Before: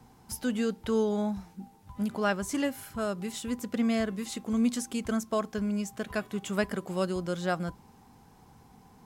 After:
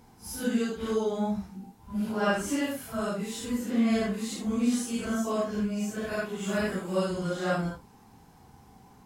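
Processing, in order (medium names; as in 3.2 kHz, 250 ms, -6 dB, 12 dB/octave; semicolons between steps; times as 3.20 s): phase randomisation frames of 200 ms; trim +1.5 dB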